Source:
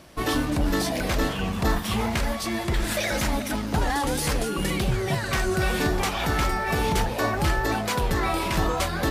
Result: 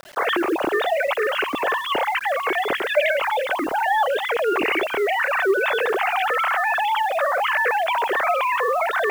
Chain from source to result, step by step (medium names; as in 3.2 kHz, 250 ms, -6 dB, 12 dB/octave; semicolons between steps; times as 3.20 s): formants replaced by sine waves; in parallel at -2.5 dB: compressor with a negative ratio -27 dBFS, ratio -0.5; on the sum: bit crusher 7-bit